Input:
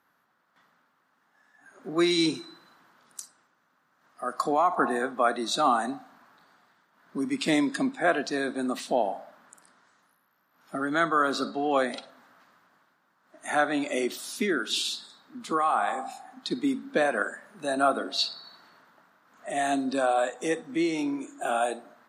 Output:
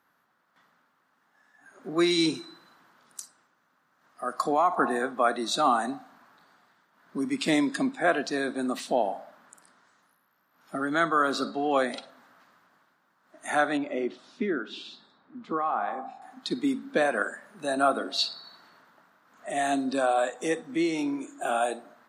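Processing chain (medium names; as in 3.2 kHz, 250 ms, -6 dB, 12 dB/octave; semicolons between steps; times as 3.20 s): 13.77–16.22 s: tape spacing loss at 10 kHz 35 dB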